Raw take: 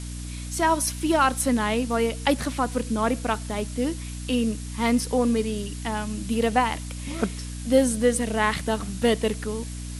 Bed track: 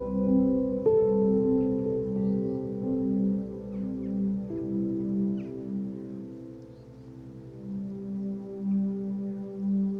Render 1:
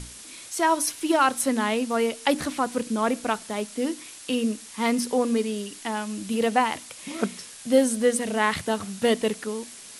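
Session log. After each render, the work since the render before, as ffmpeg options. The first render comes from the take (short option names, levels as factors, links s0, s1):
-af "bandreject=f=60:t=h:w=6,bandreject=f=120:t=h:w=6,bandreject=f=180:t=h:w=6,bandreject=f=240:t=h:w=6,bandreject=f=300:t=h:w=6"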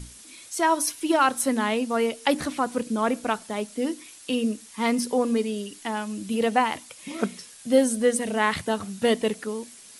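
-af "afftdn=nr=6:nf=-44"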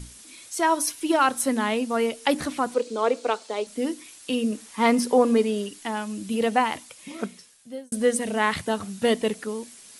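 -filter_complex "[0:a]asettb=1/sr,asplit=3[s0][s1][s2];[s0]atrim=end=2.744[s3];[s1]atrim=start=2.74:end=3.67,asetpts=PTS-STARTPTS,afade=t=in:d=0.004:c=qsin,afade=t=out:st=0.926:d=0.004:c=qsin,highpass=f=290:w=0.5412,highpass=f=290:w=1.3066,equalizer=f=300:t=q:w=4:g=-4,equalizer=f=470:t=q:w=4:g=8,equalizer=f=1700:t=q:w=4:g=-5,equalizer=f=4200:t=q:w=4:g=6,lowpass=f=8300:w=0.5412,lowpass=f=8300:w=1.3066[s4];[s2]atrim=start=3.666[s5];[s3][s4]acrossfade=d=0.004:c1=hsin:c2=qsin[s6];[s6][s5]acrossfade=d=0.004:c1=qsin:c2=hsin,asettb=1/sr,asplit=3[s7][s8][s9];[s7]atrim=end=4.524[s10];[s8]atrim=start=4.52:end=5.69,asetpts=PTS-STARTPTS,afade=t=in:d=0.004:c=qsin,afade=t=out:st=1.166:d=0.004:c=qsin,equalizer=f=780:w=0.36:g=6[s11];[s9]atrim=start=5.686[s12];[s10][s11]acrossfade=d=0.004:c1=hsin:c2=qsin[s13];[s13][s12]acrossfade=d=0.004:c1=qsin:c2=hsin,asplit=2[s14][s15];[s14]atrim=end=7.92,asetpts=PTS-STARTPTS,afade=t=out:st=6.77:d=1.15[s16];[s15]atrim=start=7.92,asetpts=PTS-STARTPTS,afade=t=in:d=0.004:c=hsin[s17];[s16][s17]concat=n=2:v=0:a=1"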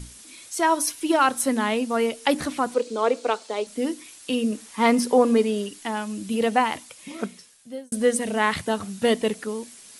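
-af "volume=1.12"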